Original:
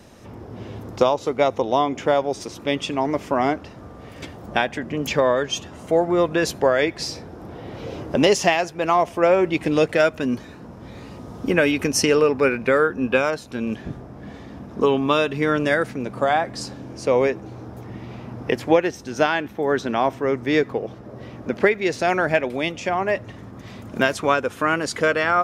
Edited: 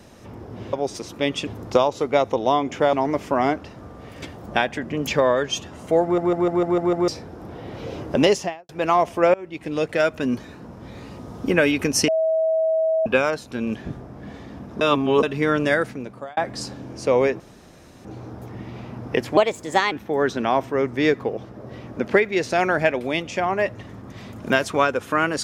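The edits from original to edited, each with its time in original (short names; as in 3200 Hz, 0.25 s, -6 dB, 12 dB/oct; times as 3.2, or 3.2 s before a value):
2.19–2.93 move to 0.73
6.03 stutter in place 0.15 s, 7 plays
8.21–8.69 studio fade out
9.34–10.25 fade in linear, from -24 dB
12.08–13.06 bleep 643 Hz -17 dBFS
14.81–15.23 reverse
15.77–16.37 fade out linear
17.4 insert room tone 0.65 s
18.72–19.41 speed 126%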